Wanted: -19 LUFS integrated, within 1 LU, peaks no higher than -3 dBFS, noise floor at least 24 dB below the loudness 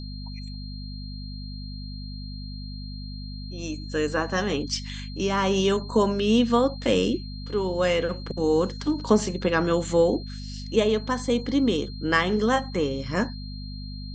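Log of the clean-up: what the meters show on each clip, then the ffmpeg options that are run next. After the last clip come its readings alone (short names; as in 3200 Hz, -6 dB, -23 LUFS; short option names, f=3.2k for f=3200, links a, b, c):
hum 50 Hz; harmonics up to 250 Hz; hum level -33 dBFS; steady tone 4200 Hz; tone level -43 dBFS; loudness -24.5 LUFS; peak -6.5 dBFS; loudness target -19.0 LUFS
-> -af "bandreject=f=50:t=h:w=4,bandreject=f=100:t=h:w=4,bandreject=f=150:t=h:w=4,bandreject=f=200:t=h:w=4,bandreject=f=250:t=h:w=4"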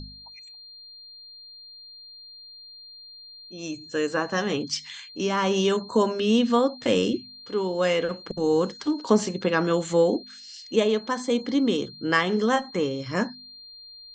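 hum none; steady tone 4200 Hz; tone level -43 dBFS
-> -af "bandreject=f=4.2k:w=30"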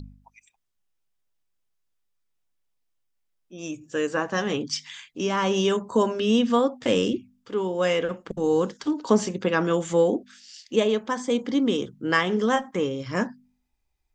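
steady tone none; loudness -25.0 LUFS; peak -6.0 dBFS; loudness target -19.0 LUFS
-> -af "volume=6dB,alimiter=limit=-3dB:level=0:latency=1"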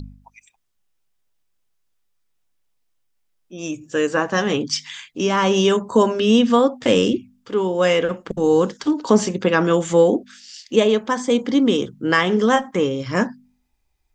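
loudness -19.0 LUFS; peak -3.0 dBFS; noise floor -68 dBFS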